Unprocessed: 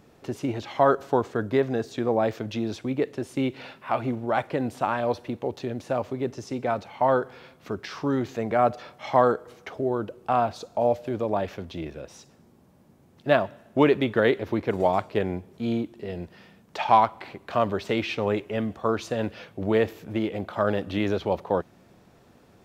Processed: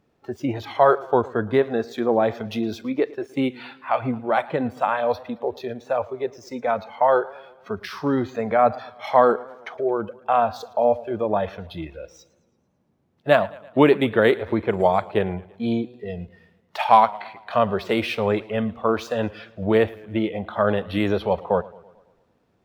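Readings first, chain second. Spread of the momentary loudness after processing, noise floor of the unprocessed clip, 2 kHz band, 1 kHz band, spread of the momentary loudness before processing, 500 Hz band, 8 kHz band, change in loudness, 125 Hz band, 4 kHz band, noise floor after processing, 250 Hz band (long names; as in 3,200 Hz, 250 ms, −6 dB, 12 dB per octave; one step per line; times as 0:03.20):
15 LU, −57 dBFS, +4.0 dB, +4.0 dB, 13 LU, +4.0 dB, can't be measured, +4.0 dB, +1.0 dB, +3.0 dB, −66 dBFS, +2.5 dB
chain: running median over 5 samples
noise reduction from a noise print of the clip's start 15 dB
feedback echo with a swinging delay time 111 ms, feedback 55%, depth 108 cents, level −21 dB
level +4 dB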